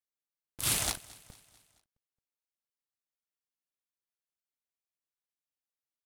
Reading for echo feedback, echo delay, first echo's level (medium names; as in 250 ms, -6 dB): 52%, 221 ms, -21.5 dB